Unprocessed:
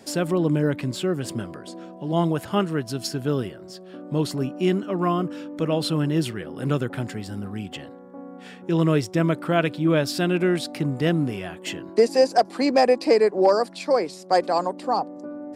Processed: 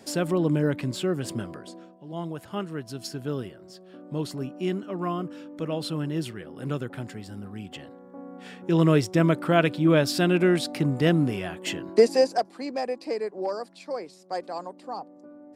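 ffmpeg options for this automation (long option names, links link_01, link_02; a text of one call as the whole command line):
ffmpeg -i in.wav -af "volume=12.5dB,afade=type=out:start_time=1.56:duration=0.42:silence=0.251189,afade=type=in:start_time=1.98:duration=1.18:silence=0.421697,afade=type=in:start_time=7.52:duration=1.36:silence=0.446684,afade=type=out:start_time=12:duration=0.53:silence=0.237137" out.wav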